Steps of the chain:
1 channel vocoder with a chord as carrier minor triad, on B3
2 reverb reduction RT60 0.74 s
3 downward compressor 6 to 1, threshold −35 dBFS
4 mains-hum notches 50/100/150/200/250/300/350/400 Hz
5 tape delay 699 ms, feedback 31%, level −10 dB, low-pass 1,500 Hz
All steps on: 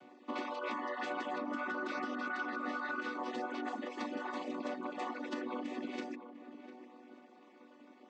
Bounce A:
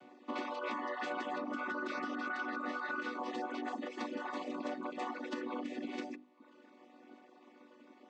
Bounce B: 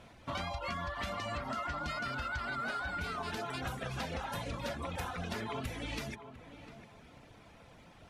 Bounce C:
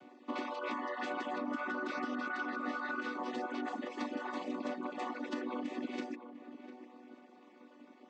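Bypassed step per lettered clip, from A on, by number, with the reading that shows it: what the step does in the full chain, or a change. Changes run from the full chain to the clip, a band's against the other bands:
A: 5, echo-to-direct ratio −33.0 dB to none audible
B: 1, 8 kHz band +9.5 dB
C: 4, 250 Hz band +1.5 dB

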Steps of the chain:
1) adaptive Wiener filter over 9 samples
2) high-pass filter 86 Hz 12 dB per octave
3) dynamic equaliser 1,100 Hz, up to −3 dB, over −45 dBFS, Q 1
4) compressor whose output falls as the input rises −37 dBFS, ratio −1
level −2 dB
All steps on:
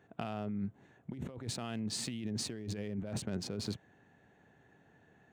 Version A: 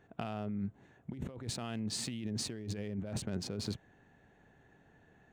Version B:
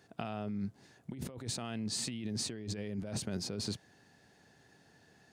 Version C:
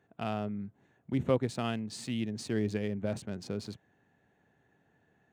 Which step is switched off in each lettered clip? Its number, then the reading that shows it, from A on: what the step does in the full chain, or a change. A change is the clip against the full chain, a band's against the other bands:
2, change in crest factor −2.5 dB
1, 8 kHz band +3.0 dB
4, change in crest factor +2.5 dB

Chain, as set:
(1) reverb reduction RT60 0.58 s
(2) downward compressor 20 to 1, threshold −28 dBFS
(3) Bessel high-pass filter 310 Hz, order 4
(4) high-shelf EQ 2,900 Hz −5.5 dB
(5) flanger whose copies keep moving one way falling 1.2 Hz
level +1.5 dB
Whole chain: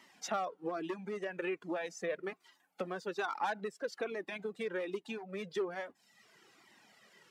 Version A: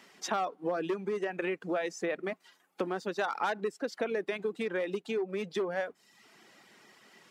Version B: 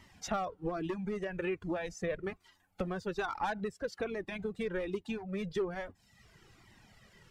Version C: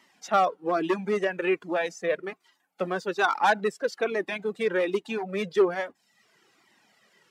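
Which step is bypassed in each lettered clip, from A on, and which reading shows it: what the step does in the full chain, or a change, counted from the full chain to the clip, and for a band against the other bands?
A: 5, change in integrated loudness +5.0 LU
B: 3, 125 Hz band +10.0 dB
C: 2, average gain reduction 10.0 dB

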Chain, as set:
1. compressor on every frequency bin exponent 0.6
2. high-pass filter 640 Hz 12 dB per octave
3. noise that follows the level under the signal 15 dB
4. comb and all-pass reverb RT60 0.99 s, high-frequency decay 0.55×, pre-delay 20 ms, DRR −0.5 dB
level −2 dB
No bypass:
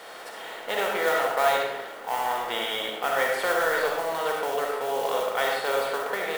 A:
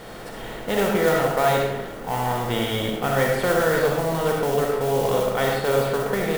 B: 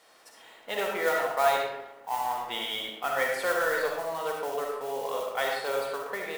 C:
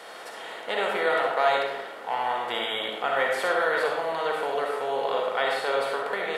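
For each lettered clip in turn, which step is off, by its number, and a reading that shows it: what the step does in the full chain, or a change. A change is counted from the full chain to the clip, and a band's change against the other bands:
2, 125 Hz band +22.5 dB
1, change in crest factor +2.0 dB
3, 8 kHz band −8.5 dB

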